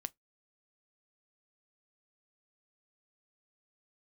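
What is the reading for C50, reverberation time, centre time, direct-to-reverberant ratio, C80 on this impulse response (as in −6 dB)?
34.5 dB, non-exponential decay, 1 ms, 13.5 dB, 46.5 dB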